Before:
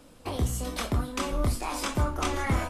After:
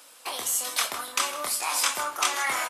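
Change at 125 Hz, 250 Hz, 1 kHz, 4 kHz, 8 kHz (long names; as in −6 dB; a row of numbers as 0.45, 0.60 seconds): below −30 dB, −16.0 dB, +3.5 dB, +9.0 dB, +11.5 dB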